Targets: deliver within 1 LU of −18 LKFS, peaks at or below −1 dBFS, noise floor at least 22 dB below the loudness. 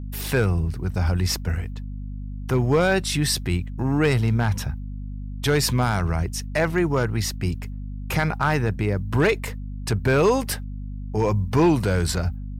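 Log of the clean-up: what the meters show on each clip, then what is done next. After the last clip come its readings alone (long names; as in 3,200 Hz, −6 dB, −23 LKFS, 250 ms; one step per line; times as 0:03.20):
share of clipped samples 0.5%; peaks flattened at −12.0 dBFS; mains hum 50 Hz; hum harmonics up to 250 Hz; level of the hum −29 dBFS; integrated loudness −23.0 LKFS; sample peak −12.0 dBFS; target loudness −18.0 LKFS
→ clipped peaks rebuilt −12 dBFS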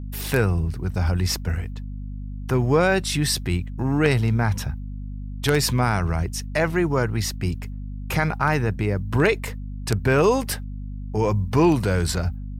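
share of clipped samples 0.0%; mains hum 50 Hz; hum harmonics up to 250 Hz; level of the hum −29 dBFS
→ hum removal 50 Hz, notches 5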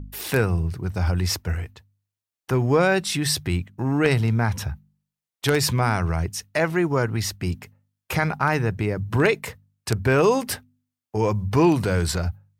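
mains hum none found; integrated loudness −23.0 LKFS; sample peak −3.0 dBFS; target loudness −18.0 LKFS
→ level +5 dB
brickwall limiter −1 dBFS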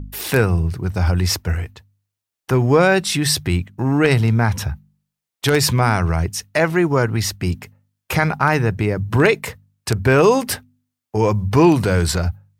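integrated loudness −18.0 LKFS; sample peak −1.0 dBFS; background noise floor −83 dBFS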